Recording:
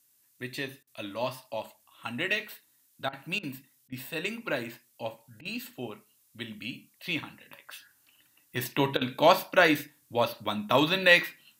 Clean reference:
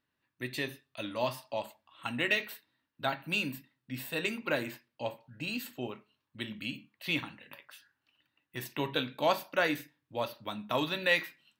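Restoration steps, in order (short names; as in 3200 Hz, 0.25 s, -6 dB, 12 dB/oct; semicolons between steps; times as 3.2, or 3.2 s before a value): interpolate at 0.83/3.09/3.39/3.88/5.41/8.97, 41 ms; expander -59 dBFS, range -21 dB; gain 0 dB, from 7.67 s -7.5 dB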